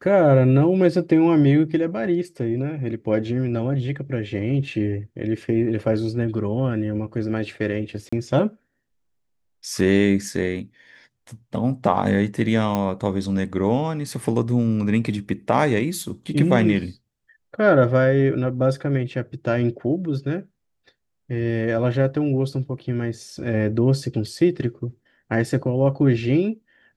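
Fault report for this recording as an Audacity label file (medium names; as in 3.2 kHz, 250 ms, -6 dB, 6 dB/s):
8.090000	8.120000	dropout 35 ms
12.750000	12.750000	pop -10 dBFS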